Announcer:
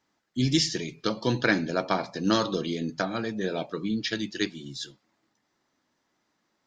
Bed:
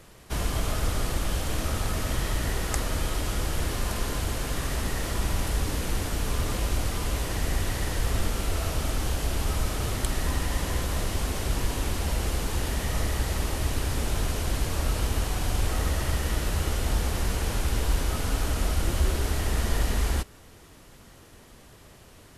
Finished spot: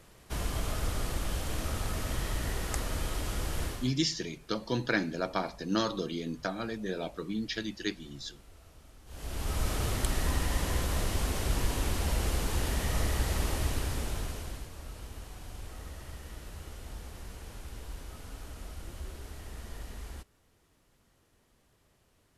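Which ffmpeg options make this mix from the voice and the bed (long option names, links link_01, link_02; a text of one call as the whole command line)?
ffmpeg -i stem1.wav -i stem2.wav -filter_complex "[0:a]adelay=3450,volume=-5.5dB[link_01];[1:a]volume=19.5dB,afade=type=out:start_time=3.64:duration=0.28:silence=0.0794328,afade=type=in:start_time=9.06:duration=0.65:silence=0.0562341,afade=type=out:start_time=13.52:duration=1.18:silence=0.177828[link_02];[link_01][link_02]amix=inputs=2:normalize=0" out.wav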